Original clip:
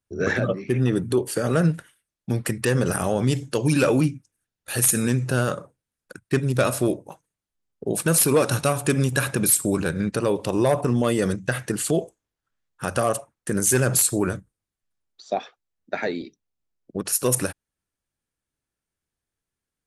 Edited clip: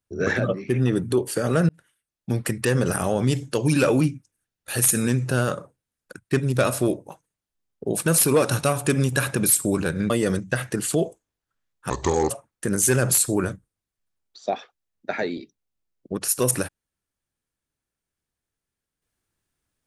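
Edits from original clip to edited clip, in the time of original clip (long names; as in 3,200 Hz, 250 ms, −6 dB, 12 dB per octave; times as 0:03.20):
0:01.69–0:02.32: fade in
0:10.10–0:11.06: remove
0:12.86–0:13.14: play speed 70%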